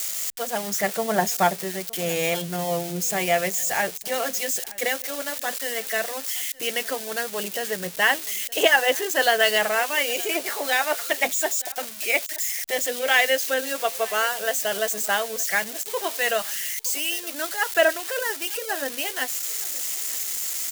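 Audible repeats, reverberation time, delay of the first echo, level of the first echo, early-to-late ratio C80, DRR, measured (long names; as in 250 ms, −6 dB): 1, no reverb audible, 918 ms, −21.5 dB, no reverb audible, no reverb audible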